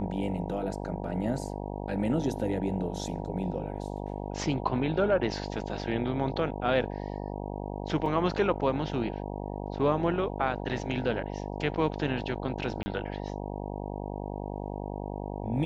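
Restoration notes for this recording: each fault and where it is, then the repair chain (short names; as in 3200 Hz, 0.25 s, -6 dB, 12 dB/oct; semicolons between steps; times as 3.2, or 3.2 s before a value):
buzz 50 Hz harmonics 19 -36 dBFS
8.06 gap 2.5 ms
12.83–12.86 gap 30 ms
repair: de-hum 50 Hz, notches 19; interpolate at 8.06, 2.5 ms; interpolate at 12.83, 30 ms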